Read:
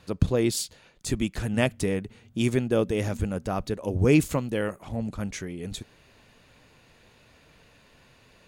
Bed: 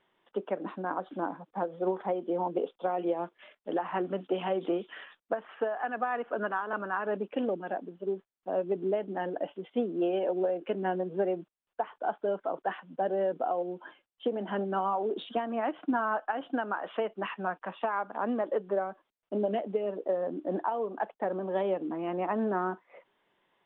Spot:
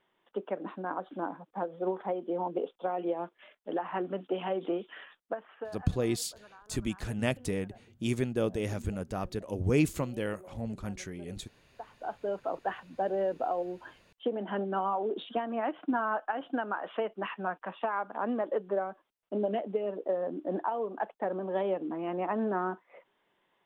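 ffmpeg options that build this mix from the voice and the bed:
ffmpeg -i stem1.wav -i stem2.wav -filter_complex "[0:a]adelay=5650,volume=-6dB[link_01];[1:a]volume=20dB,afade=type=out:start_time=5.15:duration=0.8:silence=0.0891251,afade=type=in:start_time=11.64:duration=0.84:silence=0.0794328[link_02];[link_01][link_02]amix=inputs=2:normalize=0" out.wav

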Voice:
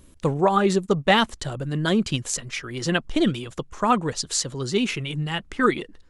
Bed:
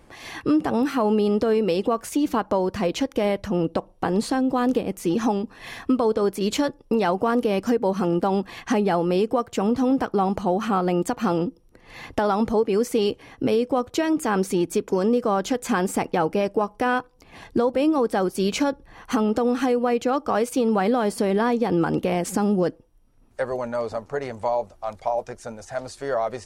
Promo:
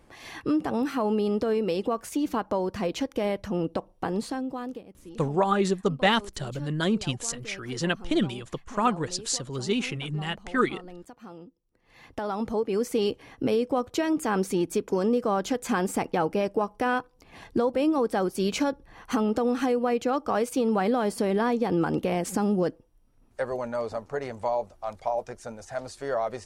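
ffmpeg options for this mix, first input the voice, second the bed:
ffmpeg -i stem1.wav -i stem2.wav -filter_complex "[0:a]adelay=4950,volume=-4dB[link_01];[1:a]volume=13.5dB,afade=type=out:start_time=3.99:duration=0.89:silence=0.141254,afade=type=in:start_time=11.65:duration=1.39:silence=0.11885[link_02];[link_01][link_02]amix=inputs=2:normalize=0" out.wav

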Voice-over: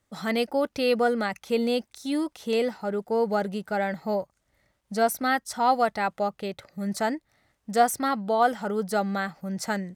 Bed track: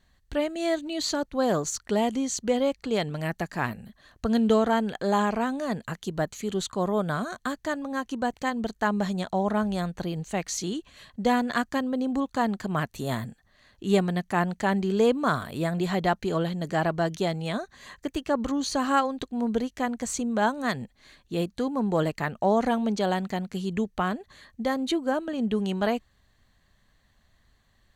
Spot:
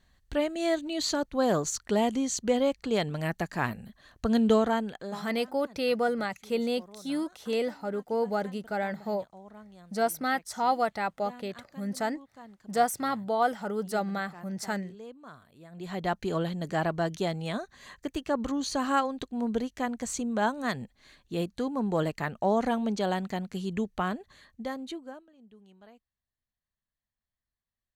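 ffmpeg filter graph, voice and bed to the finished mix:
ffmpeg -i stem1.wav -i stem2.wav -filter_complex "[0:a]adelay=5000,volume=-4dB[link_01];[1:a]volume=19.5dB,afade=type=out:start_time=4.54:duration=0.7:silence=0.0749894,afade=type=in:start_time=15.69:duration=0.53:silence=0.0944061,afade=type=out:start_time=24.15:duration=1.14:silence=0.0501187[link_02];[link_01][link_02]amix=inputs=2:normalize=0" out.wav

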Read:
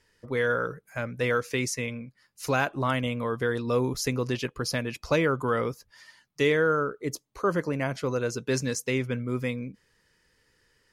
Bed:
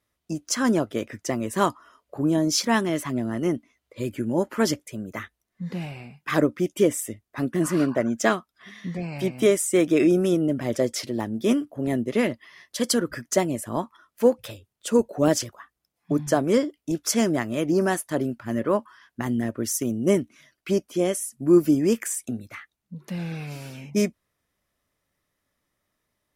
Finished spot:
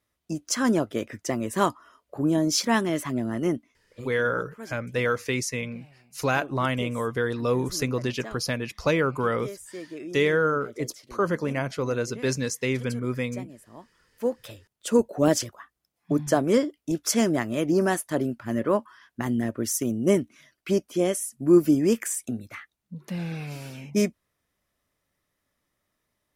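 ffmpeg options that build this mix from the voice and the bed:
ffmpeg -i stem1.wav -i stem2.wav -filter_complex "[0:a]adelay=3750,volume=1dB[link_01];[1:a]volume=17.5dB,afade=type=out:start_time=3.52:duration=0.59:silence=0.125893,afade=type=in:start_time=13.91:duration=1.01:silence=0.11885[link_02];[link_01][link_02]amix=inputs=2:normalize=0" out.wav

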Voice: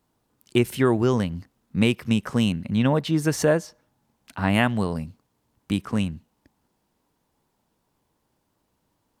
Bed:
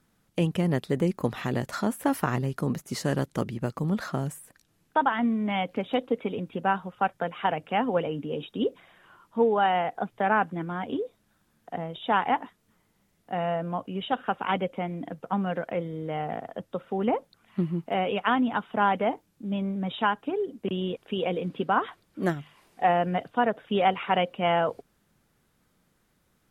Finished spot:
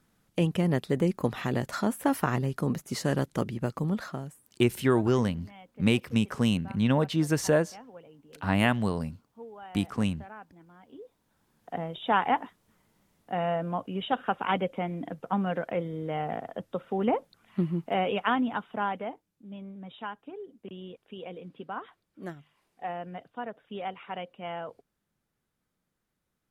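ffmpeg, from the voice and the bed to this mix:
ffmpeg -i stem1.wav -i stem2.wav -filter_complex "[0:a]adelay=4050,volume=-3.5dB[link_01];[1:a]volume=21.5dB,afade=type=out:start_time=3.79:duration=0.68:silence=0.0794328,afade=type=in:start_time=10.91:duration=0.86:silence=0.0794328,afade=type=out:start_time=18.06:duration=1.16:silence=0.237137[link_02];[link_01][link_02]amix=inputs=2:normalize=0" out.wav

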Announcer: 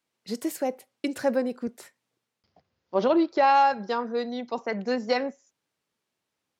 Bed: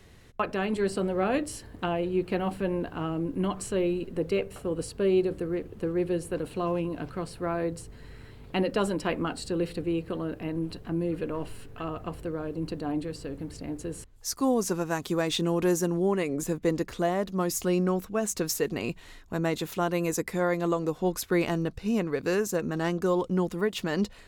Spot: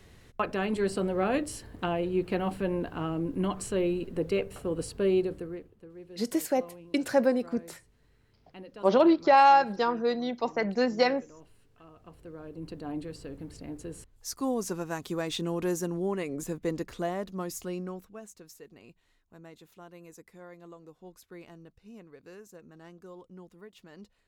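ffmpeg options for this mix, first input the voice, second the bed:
ffmpeg -i stem1.wav -i stem2.wav -filter_complex "[0:a]adelay=5900,volume=1dB[link_01];[1:a]volume=13.5dB,afade=type=out:start_time=5.09:duration=0.67:silence=0.11885,afade=type=in:start_time=11.95:duration=1.06:silence=0.188365,afade=type=out:start_time=17.06:duration=1.31:silence=0.141254[link_02];[link_01][link_02]amix=inputs=2:normalize=0" out.wav

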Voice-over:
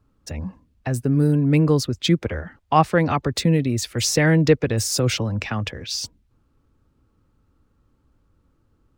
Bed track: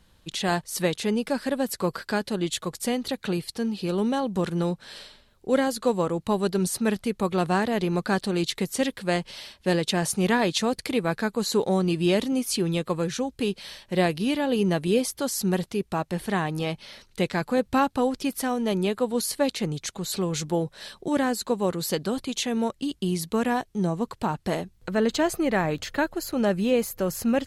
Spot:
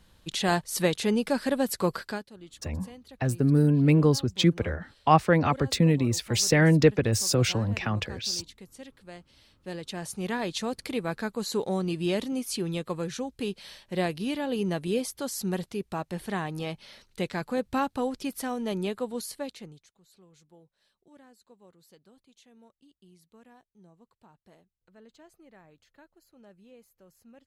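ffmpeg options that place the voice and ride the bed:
ffmpeg -i stem1.wav -i stem2.wav -filter_complex "[0:a]adelay=2350,volume=-3dB[link_01];[1:a]volume=15dB,afade=type=out:start_time=1.94:duration=0.32:silence=0.0944061,afade=type=in:start_time=9.39:duration=1.48:silence=0.177828,afade=type=out:start_time=18.88:duration=1.01:silence=0.0530884[link_02];[link_01][link_02]amix=inputs=2:normalize=0" out.wav

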